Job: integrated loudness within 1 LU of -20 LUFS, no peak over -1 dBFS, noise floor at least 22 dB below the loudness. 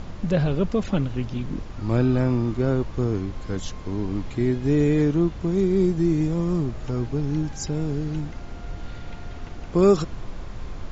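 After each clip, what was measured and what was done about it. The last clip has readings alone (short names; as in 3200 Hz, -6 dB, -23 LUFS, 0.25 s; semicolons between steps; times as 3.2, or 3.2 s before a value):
noise floor -36 dBFS; noise floor target -46 dBFS; loudness -24.0 LUFS; peak -7.0 dBFS; loudness target -20.0 LUFS
-> noise print and reduce 10 dB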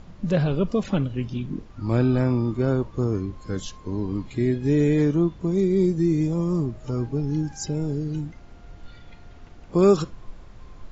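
noise floor -45 dBFS; noise floor target -46 dBFS
-> noise print and reduce 6 dB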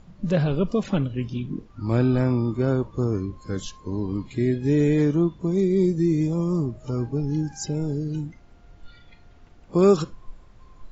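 noise floor -51 dBFS; loudness -24.0 LUFS; peak -7.5 dBFS; loudness target -20.0 LUFS
-> gain +4 dB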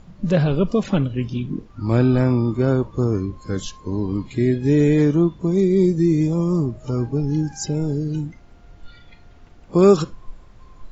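loudness -20.0 LUFS; peak -3.5 dBFS; noise floor -47 dBFS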